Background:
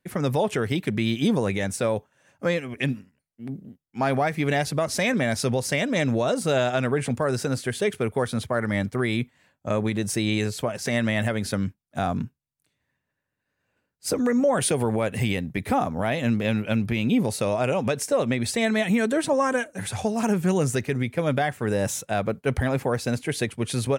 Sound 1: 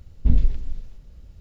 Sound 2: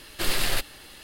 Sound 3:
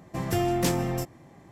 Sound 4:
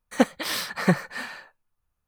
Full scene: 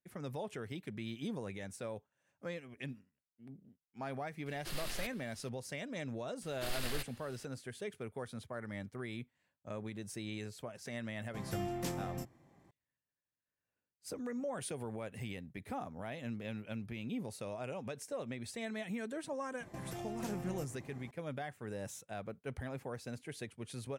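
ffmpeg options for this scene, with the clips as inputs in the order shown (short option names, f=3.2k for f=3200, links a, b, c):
-filter_complex "[2:a]asplit=2[a][b];[3:a]asplit=2[c][d];[0:a]volume=-18.5dB[e];[d]acompressor=threshold=-38dB:ratio=6:attack=3.2:release=140:knee=1:detection=peak[f];[a]atrim=end=1.03,asetpts=PTS-STARTPTS,volume=-17dB,afade=t=in:d=0.004:c=hsin,afade=t=out:st=1.026:d=0.004:c=hsin,adelay=4460[g];[b]atrim=end=1.03,asetpts=PTS-STARTPTS,volume=-14.5dB,afade=t=in:d=0.004:c=hsin,afade=t=out:st=1.026:d=0.004:c=hsin,adelay=283122S[h];[c]atrim=end=1.51,asetpts=PTS-STARTPTS,volume=-13.5dB,afade=t=in:d=0.004:c=hsin,afade=t=out:st=1.506:d=0.004:c=hsin,adelay=11200[i];[f]atrim=end=1.51,asetpts=PTS-STARTPTS,volume=-3.5dB,afade=t=in:d=0.004:c=hsin,afade=t=out:st=1.506:d=0.004:c=hsin,adelay=19600[j];[e][g][h][i][j]amix=inputs=5:normalize=0"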